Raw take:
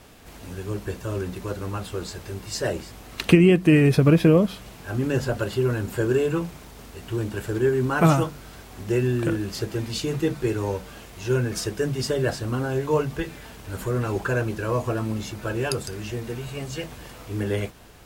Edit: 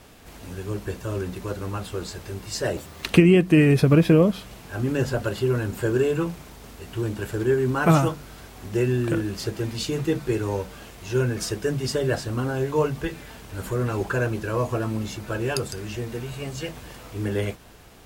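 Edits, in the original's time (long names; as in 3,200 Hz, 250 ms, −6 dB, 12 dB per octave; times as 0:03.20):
0:02.77–0:03.18: play speed 158%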